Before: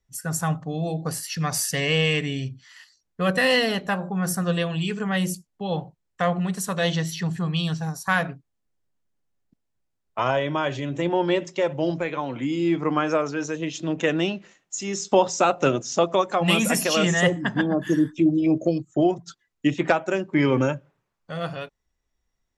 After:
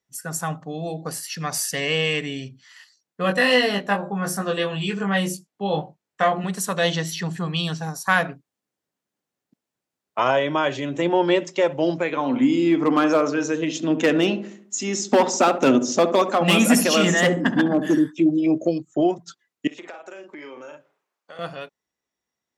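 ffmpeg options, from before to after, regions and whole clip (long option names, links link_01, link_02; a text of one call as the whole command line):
ffmpeg -i in.wav -filter_complex "[0:a]asettb=1/sr,asplit=3[link_01][link_02][link_03];[link_01]atrim=end=3.224[link_04];[link_02]atrim=start=3.22:end=6.44,asetpts=PTS-STARTPTS,afade=type=in:duration=0.004:curve=qsin,afade=type=out:start_time=3.216:duration=0.004:curve=qsin,highshelf=frequency=6000:gain=-5.5,asplit=2[link_05][link_06];[link_06]adelay=20,volume=-3dB[link_07];[link_05][link_07]amix=inputs=2:normalize=0,atrim=end_sample=142002[link_08];[link_03]atrim=start=6.436[link_09];[link_04][link_08]acrossfade=duration=0.004:curve1=hsin:curve2=qsin[link_10];[link_10][link_09]acrossfade=duration=0.004:curve1=qsin:curve2=hsin,asettb=1/sr,asplit=3[link_11][link_12][link_13];[link_11]atrim=end=12.124[link_14];[link_12]atrim=start=12.12:end=17.98,asetpts=PTS-STARTPTS,afade=type=in:duration=0.004:curve=qsin,afade=type=out:start_time=5.856:duration=0.004:curve=qsin,volume=14.5dB,asoftclip=hard,volume=-14.5dB,equalizer=frequency=250:width_type=o:width=0.29:gain=12.5,asplit=2[link_15][link_16];[link_16]adelay=69,lowpass=frequency=880:poles=1,volume=-8.5dB,asplit=2[link_17][link_18];[link_18]adelay=69,lowpass=frequency=880:poles=1,volume=0.53,asplit=2[link_19][link_20];[link_20]adelay=69,lowpass=frequency=880:poles=1,volume=0.53,asplit=2[link_21][link_22];[link_22]adelay=69,lowpass=frequency=880:poles=1,volume=0.53,asplit=2[link_23][link_24];[link_24]adelay=69,lowpass=frequency=880:poles=1,volume=0.53,asplit=2[link_25][link_26];[link_26]adelay=69,lowpass=frequency=880:poles=1,volume=0.53[link_27];[link_15][link_17][link_19][link_21][link_23][link_25][link_27]amix=inputs=7:normalize=0,atrim=end_sample=258426[link_28];[link_13]atrim=start=17.976[link_29];[link_14][link_28]acrossfade=duration=0.004:curve1=hsin:curve2=qsin[link_30];[link_30][link_29]acrossfade=duration=0.004:curve1=qsin:curve2=hsin,asettb=1/sr,asplit=3[link_31][link_32][link_33];[link_31]atrim=end=19.674[link_34];[link_32]atrim=start=19.67:end=21.39,asetpts=PTS-STARTPTS,afade=type=in:duration=0.004:curve=qsin,afade=type=out:start_time=1.716:duration=0.004:curve=qsin,highpass=370,asplit=2[link_35][link_36];[link_36]adelay=40,volume=-6dB[link_37];[link_35][link_37]amix=inputs=2:normalize=0,atrim=end_sample=75852,acompressor=threshold=-36dB:ratio=6:attack=3.2:release=140:knee=1:detection=peak[link_38];[link_33]atrim=start=21.386[link_39];[link_34][link_38]acrossfade=duration=0.004:curve1=hsin:curve2=qsin[link_40];[link_40][link_39]acrossfade=duration=0.004:curve1=qsin:curve2=hsin,highpass=200,dynaudnorm=framelen=290:gausssize=31:maxgain=4.5dB" out.wav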